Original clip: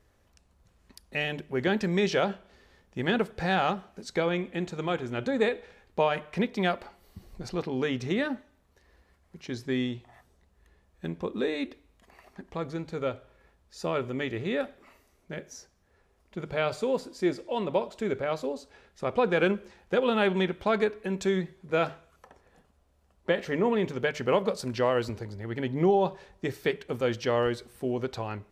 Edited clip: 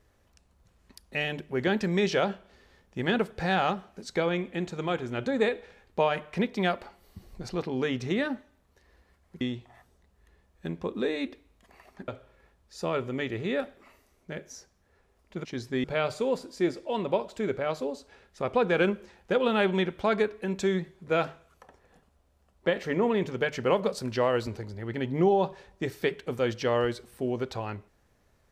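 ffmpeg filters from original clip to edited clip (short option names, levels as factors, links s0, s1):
-filter_complex "[0:a]asplit=5[s0][s1][s2][s3][s4];[s0]atrim=end=9.412[s5];[s1]atrim=start=9.798:end=12.472[s6];[s2]atrim=start=13.088:end=16.462[s7];[s3]atrim=start=9.408:end=9.802[s8];[s4]atrim=start=16.458[s9];[s5][s6]acrossfade=d=0.004:c1=hsin:c2=hsin[s10];[s10][s7]acrossfade=d=0.004:c1=hsin:c2=hsin[s11];[s11][s8]acrossfade=d=0.004:c1=hsin:c2=hsin[s12];[s12][s9]acrossfade=d=0.004:c1=hsin:c2=hsin"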